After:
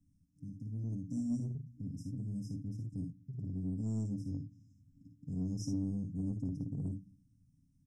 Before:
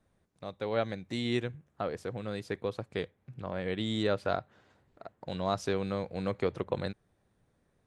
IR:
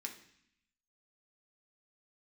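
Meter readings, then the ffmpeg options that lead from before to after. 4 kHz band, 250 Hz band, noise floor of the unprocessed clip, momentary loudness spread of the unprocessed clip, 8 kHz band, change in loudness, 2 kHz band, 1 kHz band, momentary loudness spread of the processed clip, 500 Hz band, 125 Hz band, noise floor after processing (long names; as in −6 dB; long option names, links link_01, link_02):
−21.0 dB, −1.0 dB, −74 dBFS, 12 LU, −2.5 dB, −5.0 dB, below −40 dB, below −30 dB, 8 LU, −24.0 dB, +2.0 dB, −71 dBFS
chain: -filter_complex "[0:a]equalizer=frequency=86:width_type=o:width=0.82:gain=11,bandreject=frequency=60:width_type=h:width=6,bandreject=frequency=120:width_type=h:width=6,aecho=1:1:6.7:0.48,aecho=1:1:55|73:0.501|0.266,asplit=2[link_01][link_02];[1:a]atrim=start_sample=2205[link_03];[link_02][link_03]afir=irnorm=-1:irlink=0,volume=-9dB[link_04];[link_01][link_04]amix=inputs=2:normalize=0,afftfilt=real='re*(1-between(b*sr/4096,300,5000))':imag='im*(1-between(b*sr/4096,300,5000))':win_size=4096:overlap=0.75,highshelf=frequency=4300:gain=-9.5,acrossover=split=220|1200[link_05][link_06][link_07];[link_05]asoftclip=type=tanh:threshold=-36dB[link_08];[link_08][link_06][link_07]amix=inputs=3:normalize=0"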